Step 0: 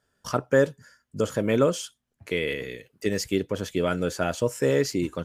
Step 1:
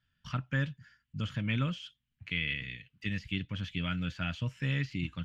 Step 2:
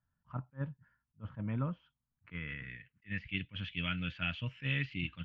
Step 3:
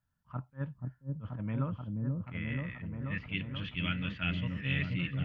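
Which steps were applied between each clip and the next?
de-essing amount 85%; drawn EQ curve 150 Hz 0 dB, 290 Hz −13 dB, 410 Hz −28 dB, 2,900 Hz +3 dB, 9,200 Hz −27 dB
low-pass filter sweep 940 Hz → 2,800 Hz, 0:01.96–0:03.52; level that may rise only so fast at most 380 dB per second; level −4 dB
echo whose low-pass opens from repeat to repeat 482 ms, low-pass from 400 Hz, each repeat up 1 octave, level 0 dB; level +1 dB

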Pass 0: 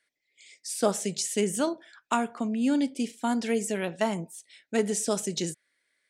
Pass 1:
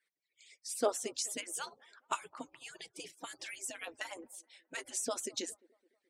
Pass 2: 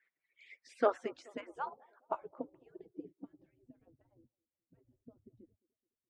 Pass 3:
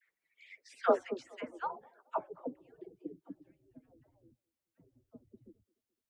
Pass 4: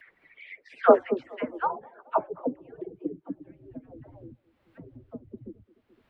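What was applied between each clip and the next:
harmonic-percussive split with one part muted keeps percussive; delay with a band-pass on its return 213 ms, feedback 46%, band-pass 570 Hz, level −23.5 dB; level −5.5 dB
low-pass filter sweep 2,000 Hz → 110 Hz, 0:00.75–0:04.27; level +1 dB
all-pass dispersion lows, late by 82 ms, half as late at 710 Hz; level +2 dB
in parallel at 0 dB: upward compression, threshold −41 dBFS; on the sum: high-frequency loss of the air 490 metres; level +6 dB

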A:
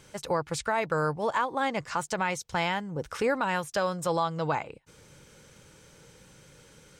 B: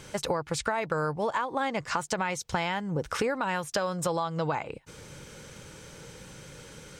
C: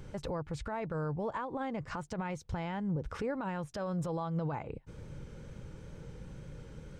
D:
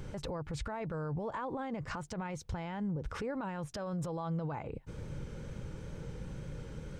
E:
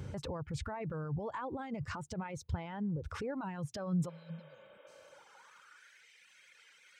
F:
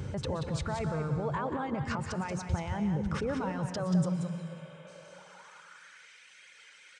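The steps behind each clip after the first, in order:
high-shelf EQ 10,000 Hz −3.5 dB; downward compressor, threshold −34 dBFS, peak gain reduction 11.5 dB; level +8 dB
spectral tilt −3.5 dB per octave; brickwall limiter −19 dBFS, peak gain reduction 8.5 dB; tape wow and flutter 25 cents; level −8 dB
brickwall limiter −34 dBFS, peak gain reduction 7 dB; level +4 dB
high-pass filter sweep 84 Hz → 2,100 Hz, 0:03.45–0:06.10; reverb reduction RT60 1.6 s; healed spectral selection 0:04.12–0:05.07, 220–3,800 Hz after; level −1 dB
single-tap delay 182 ms −7 dB; on a send at −10 dB: convolution reverb RT60 2.0 s, pre-delay 108 ms; on the sum: downsampling to 22,050 Hz; level +5.5 dB

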